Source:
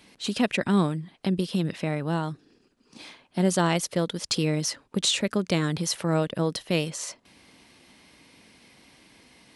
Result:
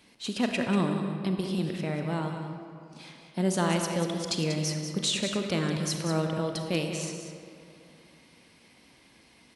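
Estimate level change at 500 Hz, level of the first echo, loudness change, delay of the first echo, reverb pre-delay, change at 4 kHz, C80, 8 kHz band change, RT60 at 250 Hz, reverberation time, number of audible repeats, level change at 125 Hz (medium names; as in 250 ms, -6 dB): -2.5 dB, -9.5 dB, -3.0 dB, 190 ms, 32 ms, -3.0 dB, 4.5 dB, -3.5 dB, 2.7 s, 2.6 s, 1, -2.5 dB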